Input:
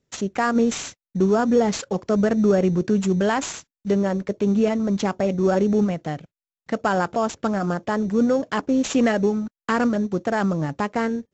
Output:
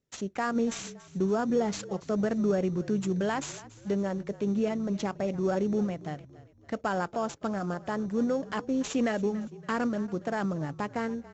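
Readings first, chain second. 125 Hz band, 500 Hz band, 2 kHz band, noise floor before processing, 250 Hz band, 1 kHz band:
-8.0 dB, -8.5 dB, -8.5 dB, under -85 dBFS, -8.5 dB, -8.5 dB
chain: frequency-shifting echo 0.283 s, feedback 44%, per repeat -36 Hz, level -18.5 dB; gain -8.5 dB

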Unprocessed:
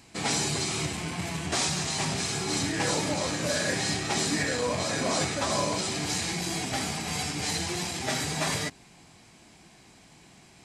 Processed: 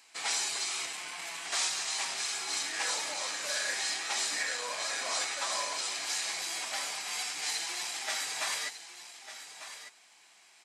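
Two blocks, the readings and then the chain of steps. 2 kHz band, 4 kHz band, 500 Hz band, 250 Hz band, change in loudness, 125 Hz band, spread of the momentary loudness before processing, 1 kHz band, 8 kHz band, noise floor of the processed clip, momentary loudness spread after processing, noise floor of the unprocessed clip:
-2.5 dB, -2.5 dB, -13.0 dB, -25.0 dB, -4.0 dB, under -30 dB, 4 LU, -6.0 dB, -2.0 dB, -60 dBFS, 14 LU, -55 dBFS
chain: octaver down 2 oct, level 0 dB; HPF 1000 Hz 12 dB/oct; on a send: echo 1.199 s -12 dB; on the sum: gain -2.5 dB

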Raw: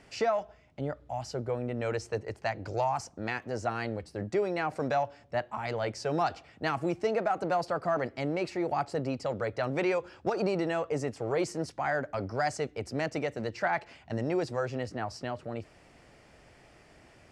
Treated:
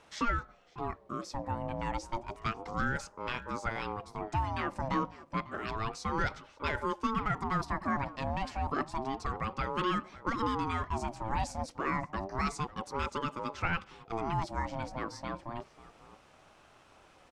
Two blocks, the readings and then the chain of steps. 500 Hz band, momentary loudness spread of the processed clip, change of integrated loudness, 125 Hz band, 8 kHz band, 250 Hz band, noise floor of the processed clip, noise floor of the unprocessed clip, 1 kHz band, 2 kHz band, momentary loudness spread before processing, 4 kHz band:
-9.5 dB, 6 LU, -3.0 dB, -1.0 dB, -2.5 dB, -2.5 dB, -61 dBFS, -58 dBFS, 0.0 dB, -1.0 dB, 7 LU, -0.5 dB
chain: outdoor echo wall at 94 m, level -17 dB; ring modulator with a swept carrier 560 Hz, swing 30%, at 0.3 Hz

